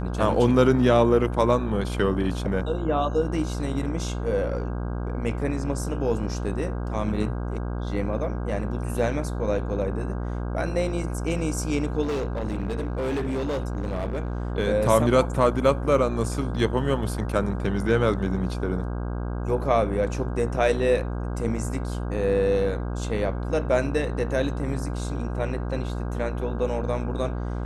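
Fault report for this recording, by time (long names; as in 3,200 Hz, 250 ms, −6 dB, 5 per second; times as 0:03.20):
mains buzz 60 Hz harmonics 27 −29 dBFS
0:12.02–0:14.52: clipping −23.5 dBFS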